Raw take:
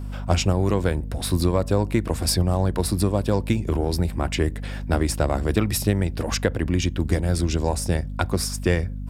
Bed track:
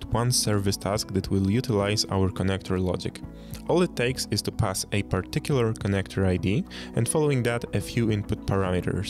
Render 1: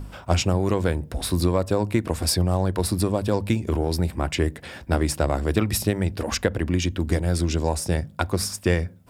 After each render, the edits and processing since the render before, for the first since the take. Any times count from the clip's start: de-hum 50 Hz, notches 5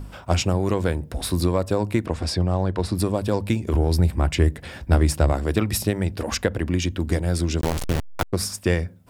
2.06–2.95 s: distance through air 88 m; 3.74–5.33 s: bass shelf 99 Hz +11.5 dB; 7.61–8.33 s: send-on-delta sampling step -18 dBFS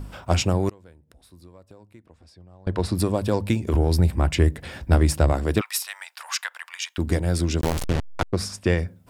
0.69–2.67 s: inverted gate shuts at -22 dBFS, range -27 dB; 5.61–6.98 s: steep high-pass 940 Hz; 7.84–8.78 s: distance through air 53 m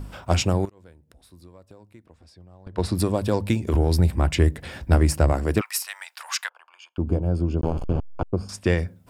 0.65–2.78 s: compression 8:1, threshold -35 dBFS; 4.93–5.89 s: peaking EQ 3.6 kHz -9 dB 0.3 oct; 6.49–8.49 s: boxcar filter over 23 samples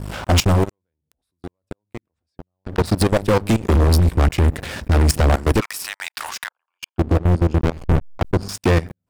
level held to a coarse grid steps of 23 dB; waveshaping leveller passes 5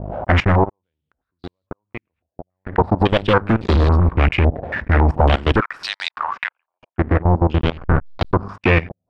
step-sequenced low-pass 3.6 Hz 680–4100 Hz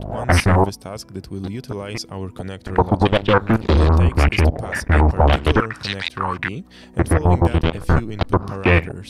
add bed track -5.5 dB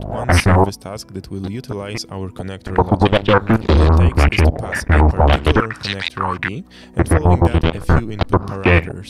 trim +2.5 dB; peak limiter -2 dBFS, peak gain reduction 2 dB

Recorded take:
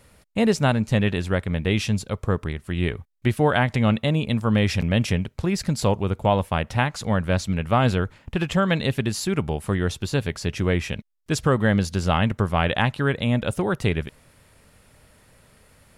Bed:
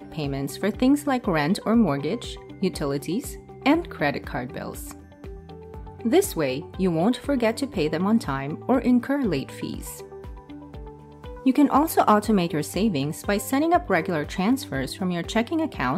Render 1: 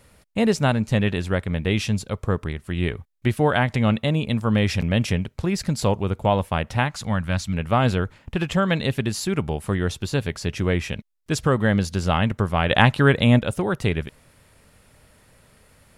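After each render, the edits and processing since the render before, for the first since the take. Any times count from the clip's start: 6.87–7.52 s: peaking EQ 440 Hz -5.5 dB -> -15 dB 0.91 oct; 12.71–13.39 s: gain +6 dB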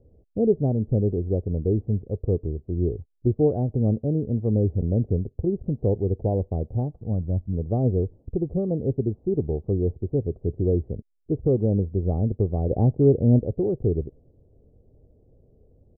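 steep low-pass 570 Hz 36 dB/octave; comb 2.6 ms, depth 40%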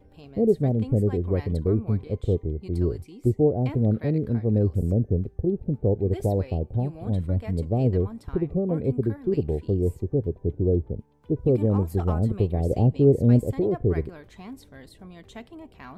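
add bed -18.5 dB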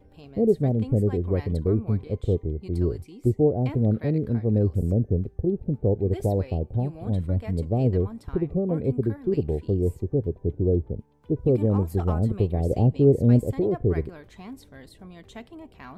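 no audible change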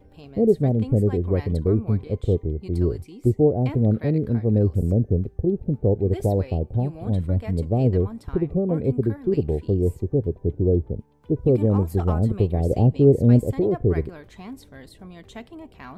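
trim +2.5 dB

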